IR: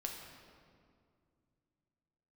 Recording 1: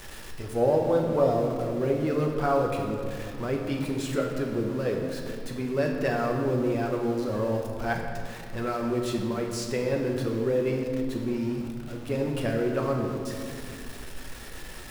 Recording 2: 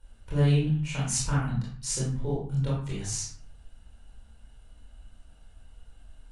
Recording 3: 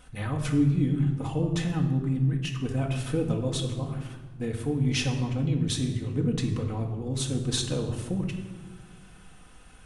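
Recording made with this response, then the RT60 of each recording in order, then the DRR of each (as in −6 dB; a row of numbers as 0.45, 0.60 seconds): 1; 2.2, 0.45, 1.4 seconds; 0.5, −7.0, 0.5 decibels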